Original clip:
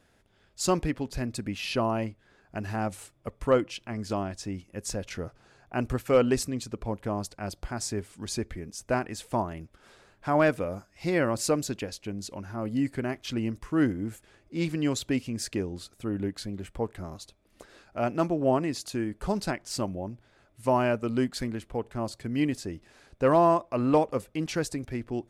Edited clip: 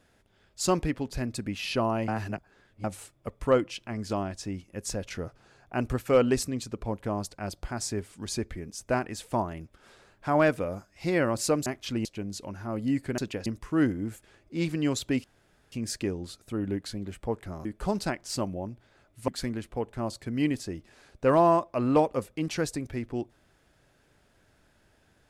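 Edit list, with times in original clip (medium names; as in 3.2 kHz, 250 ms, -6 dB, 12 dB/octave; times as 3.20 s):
2.08–2.84 s: reverse
11.66–11.94 s: swap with 13.07–13.46 s
15.24 s: insert room tone 0.48 s
17.17–19.06 s: delete
20.69–21.26 s: delete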